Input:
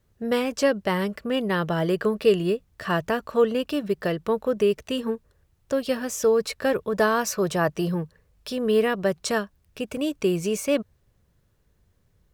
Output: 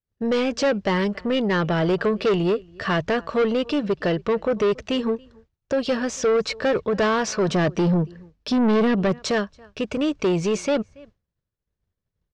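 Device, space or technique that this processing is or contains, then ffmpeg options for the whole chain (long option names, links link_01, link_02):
saturation between pre-emphasis and de-emphasis: -filter_complex "[0:a]asplit=2[link_01][link_02];[link_02]adelay=279.9,volume=-29dB,highshelf=frequency=4000:gain=-6.3[link_03];[link_01][link_03]amix=inputs=2:normalize=0,agate=range=-33dB:threshold=-49dB:ratio=3:detection=peak,asettb=1/sr,asplit=3[link_04][link_05][link_06];[link_04]atrim=end=7.484[link_07];[link_05]atrim=start=7.48:end=9.19,asetpts=PTS-STARTPTS,afade=type=in:duration=0.004:curve=qsin,afade=type=out:start_time=1.706:duration=0.004:curve=qsin,equalizer=frequency=240:width_type=o:width=0.89:gain=10[link_08];[link_06]atrim=start=9.186[link_09];[link_07][link_08]acrossfade=duration=0.004:curve1=hsin:curve2=qsin[link_10];[link_10][link_09]acrossfade=duration=0.004:curve1=qsin:curve2=hsin,highshelf=frequency=6300:gain=8.5,asoftclip=type=tanh:threshold=-22.5dB,lowpass=frequency=6100:width=0.5412,lowpass=frequency=6100:width=1.3066,highshelf=frequency=6300:gain=-8.5,volume=6.5dB"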